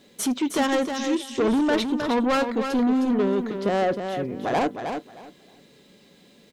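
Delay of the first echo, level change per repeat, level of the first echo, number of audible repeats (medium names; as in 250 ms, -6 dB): 312 ms, -14.5 dB, -7.0 dB, 2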